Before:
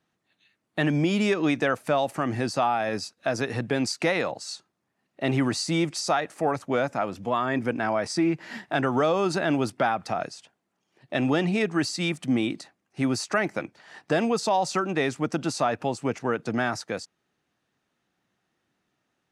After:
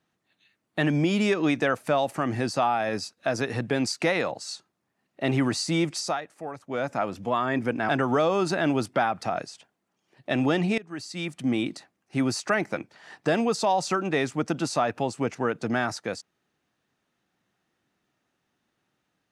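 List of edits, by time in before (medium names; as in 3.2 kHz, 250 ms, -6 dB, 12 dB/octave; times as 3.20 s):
5.97–6.94 s: dip -11 dB, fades 0.29 s
7.89–8.73 s: delete
11.62–12.50 s: fade in, from -21.5 dB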